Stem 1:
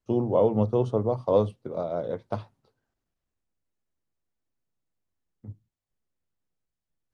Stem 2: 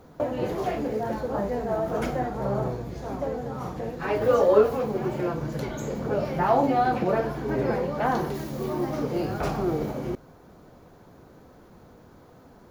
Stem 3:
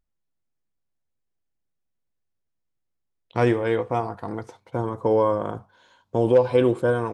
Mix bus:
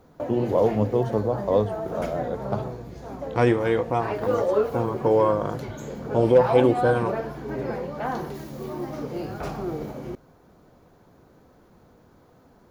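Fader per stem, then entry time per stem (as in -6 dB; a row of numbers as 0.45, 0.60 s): +1.0, -4.0, +0.5 dB; 0.20, 0.00, 0.00 s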